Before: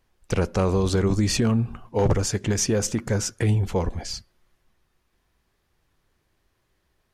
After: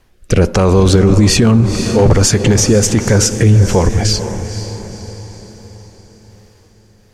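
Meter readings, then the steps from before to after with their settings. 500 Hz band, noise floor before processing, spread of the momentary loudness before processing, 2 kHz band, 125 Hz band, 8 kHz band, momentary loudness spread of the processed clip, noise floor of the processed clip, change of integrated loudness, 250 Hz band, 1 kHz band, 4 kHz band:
+12.0 dB, -71 dBFS, 7 LU, +12.0 dB, +13.0 dB, +13.0 dB, 15 LU, -48 dBFS, +12.0 dB, +12.5 dB, +11.0 dB, +13.5 dB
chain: rotary speaker horn 1.2 Hz; diffused feedback echo 0.499 s, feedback 48%, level -12.5 dB; maximiser +19 dB; gain -1 dB

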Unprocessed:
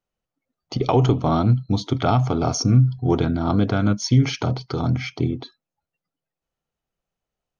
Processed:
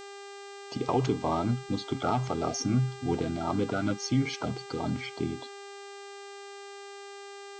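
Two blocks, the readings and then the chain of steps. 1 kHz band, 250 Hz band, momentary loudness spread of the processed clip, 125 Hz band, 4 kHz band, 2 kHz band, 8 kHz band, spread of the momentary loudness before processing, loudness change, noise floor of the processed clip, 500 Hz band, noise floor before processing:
-6.5 dB, -8.5 dB, 16 LU, -13.0 dB, -7.5 dB, -5.0 dB, n/a, 8 LU, -10.0 dB, -45 dBFS, -7.0 dB, under -85 dBFS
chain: bin magnitudes rounded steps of 30 dB; low shelf 97 Hz -10.5 dB; buzz 400 Hz, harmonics 21, -37 dBFS -5 dB/oct; gain -7.5 dB

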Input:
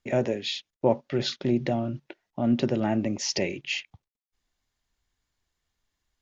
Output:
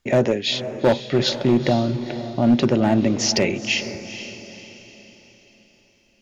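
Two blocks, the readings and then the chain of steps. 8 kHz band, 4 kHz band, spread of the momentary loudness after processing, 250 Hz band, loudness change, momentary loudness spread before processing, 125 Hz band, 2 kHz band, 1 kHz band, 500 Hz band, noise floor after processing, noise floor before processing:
n/a, +8.5 dB, 15 LU, +7.5 dB, +7.5 dB, 7 LU, +7.5 dB, +8.5 dB, +7.5 dB, +7.5 dB, -60 dBFS, under -85 dBFS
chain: hard clip -18 dBFS, distortion -15 dB; diffused feedback echo 0.469 s, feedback 44%, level -11.5 dB; gain +8 dB

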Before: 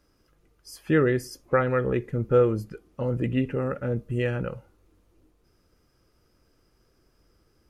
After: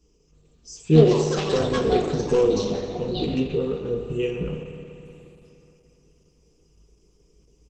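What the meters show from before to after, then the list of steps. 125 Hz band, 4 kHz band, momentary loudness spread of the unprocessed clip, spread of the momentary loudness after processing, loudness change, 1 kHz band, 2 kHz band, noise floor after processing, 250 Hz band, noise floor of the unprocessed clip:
+3.0 dB, +13.0 dB, 12 LU, 15 LU, +3.5 dB, +2.0 dB, -4.0 dB, -61 dBFS, +4.0 dB, -67 dBFS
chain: comb 4.2 ms, depth 55%; de-hum 380.8 Hz, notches 24; one-sided clip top -15 dBFS, bottom -10 dBFS; ripple EQ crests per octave 0.74, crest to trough 15 dB; speakerphone echo 0.24 s, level -24 dB; spring tank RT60 3.1 s, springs 59 ms, chirp 70 ms, DRR 5 dB; echoes that change speed 0.347 s, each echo +7 st, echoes 3; band shelf 1200 Hz -13 dB 2.3 oct; resonator 52 Hz, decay 0.32 s, harmonics all, mix 80%; gain +8 dB; Opus 12 kbps 48000 Hz

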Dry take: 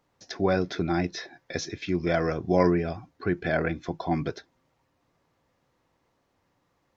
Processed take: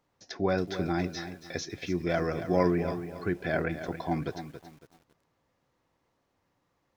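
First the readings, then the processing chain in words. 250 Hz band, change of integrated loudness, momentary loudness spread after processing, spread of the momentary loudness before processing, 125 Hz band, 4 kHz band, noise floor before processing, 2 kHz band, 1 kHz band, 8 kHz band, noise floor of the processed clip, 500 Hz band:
-3.0 dB, -3.0 dB, 12 LU, 12 LU, -3.0 dB, -3.0 dB, -73 dBFS, -3.0 dB, -3.0 dB, n/a, -76 dBFS, -3.0 dB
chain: lo-fi delay 0.277 s, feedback 35%, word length 8-bit, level -10.5 dB; gain -3.5 dB

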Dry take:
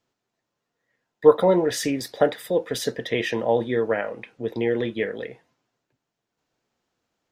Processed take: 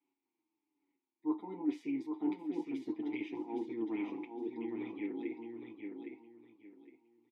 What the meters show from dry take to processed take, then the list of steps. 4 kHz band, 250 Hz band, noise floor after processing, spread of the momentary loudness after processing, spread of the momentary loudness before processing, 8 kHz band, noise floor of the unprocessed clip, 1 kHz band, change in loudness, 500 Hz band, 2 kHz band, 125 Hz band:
under -25 dB, -7.5 dB, under -85 dBFS, 15 LU, 13 LU, under -35 dB, -82 dBFS, -19.0 dB, -16.5 dB, -23.0 dB, -20.0 dB, -24.5 dB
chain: spectral limiter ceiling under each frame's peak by 13 dB; bell 350 Hz +10.5 dB 1 oct; reverse; compressor 8:1, threshold -28 dBFS, peak gain reduction 25.5 dB; reverse; vowel filter u; on a send: feedback echo 0.812 s, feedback 24%, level -5.5 dB; on the sum: endless flanger 7.7 ms -1.2 Hz; gain +5 dB

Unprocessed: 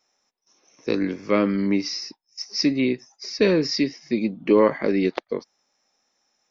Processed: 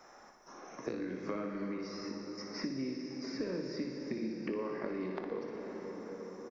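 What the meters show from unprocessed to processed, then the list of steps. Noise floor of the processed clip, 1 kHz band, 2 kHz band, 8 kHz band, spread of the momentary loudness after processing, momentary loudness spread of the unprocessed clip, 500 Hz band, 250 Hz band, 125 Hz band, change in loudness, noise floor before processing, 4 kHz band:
-57 dBFS, -14.5 dB, -16.0 dB, n/a, 7 LU, 14 LU, -16.5 dB, -15.0 dB, -15.0 dB, -17.0 dB, -76 dBFS, -19.0 dB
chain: resonant high shelf 2100 Hz -10.5 dB, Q 1.5; compressor 6:1, threshold -34 dBFS, peak gain reduction 20.5 dB; doubler 23 ms -13 dB; flutter echo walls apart 10.1 m, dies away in 0.55 s; plate-style reverb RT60 4.8 s, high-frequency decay 0.65×, DRR 4 dB; three-band squash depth 70%; gain -3.5 dB

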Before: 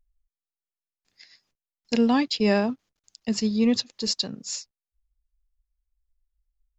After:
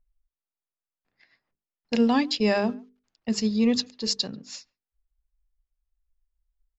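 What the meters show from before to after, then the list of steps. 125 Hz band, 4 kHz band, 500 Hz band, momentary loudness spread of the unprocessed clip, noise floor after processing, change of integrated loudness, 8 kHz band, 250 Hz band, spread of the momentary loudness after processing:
-1.5 dB, -0.5 dB, -0.5 dB, 12 LU, under -85 dBFS, 0.0 dB, n/a, -1.0 dB, 18 LU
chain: notches 50/100/150/200/250/300/350/400/450 Hz; speakerphone echo 0.14 s, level -26 dB; low-pass opened by the level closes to 1600 Hz, open at -21 dBFS

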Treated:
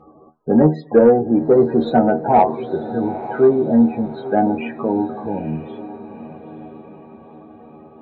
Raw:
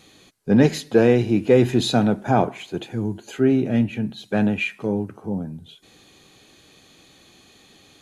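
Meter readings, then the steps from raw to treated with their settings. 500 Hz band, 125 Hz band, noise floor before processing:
+5.5 dB, -2.0 dB, -53 dBFS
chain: resonant high shelf 1700 Hz -12 dB, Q 1.5; in parallel at -1 dB: compressor, threshold -27 dBFS, peak gain reduction 16.5 dB; on the sum: loudest bins only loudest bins 32; metallic resonator 76 Hz, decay 0.22 s, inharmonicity 0.002; overdrive pedal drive 13 dB, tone 1500 Hz, clips at -8.5 dBFS; on a send: diffused feedback echo 0.903 s, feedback 50%, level -14 dB; on the sum: gain +8 dB

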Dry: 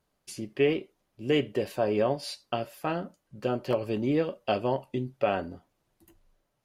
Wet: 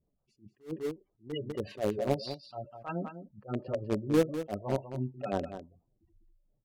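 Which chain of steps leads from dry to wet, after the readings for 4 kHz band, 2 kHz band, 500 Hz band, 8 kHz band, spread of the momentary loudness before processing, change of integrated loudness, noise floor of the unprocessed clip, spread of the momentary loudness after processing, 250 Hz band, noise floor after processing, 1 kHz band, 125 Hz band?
-7.5 dB, -9.5 dB, -5.5 dB, -5.0 dB, 11 LU, -5.0 dB, -78 dBFS, 15 LU, -3.5 dB, -79 dBFS, -7.0 dB, -1.5 dB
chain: spectral gate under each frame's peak -15 dB strong; phaser stages 2, 3.4 Hz, lowest notch 240–2300 Hz; in parallel at -9.5 dB: bit-crush 4-bit; on the sum: low-pass opened by the level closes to 690 Hz, open at -23.5 dBFS; on a send: echo 0.2 s -11 dB; on the sum: attack slew limiter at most 260 dB/s

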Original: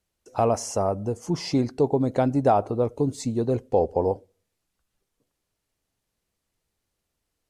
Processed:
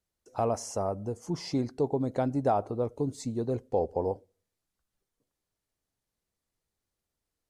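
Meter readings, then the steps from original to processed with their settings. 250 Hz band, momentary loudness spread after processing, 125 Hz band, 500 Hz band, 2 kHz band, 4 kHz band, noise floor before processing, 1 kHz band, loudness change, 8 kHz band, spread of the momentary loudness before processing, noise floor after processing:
-6.5 dB, 6 LU, -6.5 dB, -6.5 dB, -7.5 dB, -7.0 dB, -81 dBFS, -6.5 dB, -6.5 dB, -6.5 dB, 6 LU, under -85 dBFS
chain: bell 2700 Hz -3.5 dB 0.47 oct; gain -6.5 dB

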